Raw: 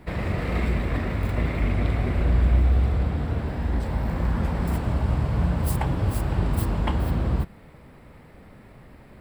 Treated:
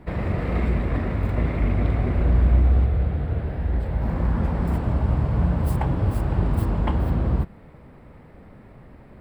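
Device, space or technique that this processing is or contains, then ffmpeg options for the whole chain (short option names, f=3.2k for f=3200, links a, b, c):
through cloth: -filter_complex "[0:a]asettb=1/sr,asplit=3[a][b][c];[a]atrim=end=2.844[d];[b]atrim=start=2.84:end=4.02,asetpts=PTS-STARTPTS,afade=t=in:d=0.004:c=qsin,afade=t=out:st=1.176:d=0.004:c=qsin,equalizer=f=250:t=o:w=0.67:g=-7,equalizer=f=1k:t=o:w=0.67:g=-6,equalizer=f=6.3k:t=o:w=0.67:g=-9[e];[c]atrim=start=4.016[f];[d][e]acrossfade=d=0.004:c1=hsin:c2=qsin[g];[g][f]acrossfade=d=0.004:c1=qsin:c2=hsin,highshelf=f=2.4k:g=-11,volume=2dB"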